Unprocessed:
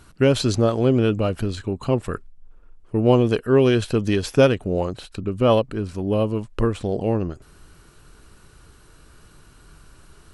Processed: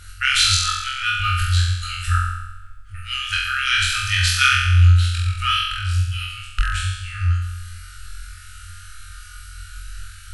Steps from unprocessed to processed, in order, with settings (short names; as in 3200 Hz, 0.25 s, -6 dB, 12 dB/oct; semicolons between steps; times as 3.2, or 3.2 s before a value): FFT band-reject 100–1200 Hz; flutter echo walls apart 3.9 m, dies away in 1 s; gain +7.5 dB